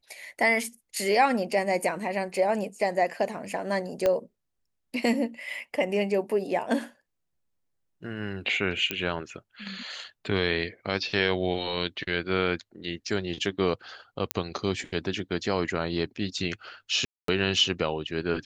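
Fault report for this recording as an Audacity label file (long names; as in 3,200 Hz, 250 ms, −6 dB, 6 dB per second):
4.060000	4.060000	click −12 dBFS
8.910000	8.910000	click −12 dBFS
14.310000	14.310000	click −8 dBFS
17.050000	17.280000	drop-out 233 ms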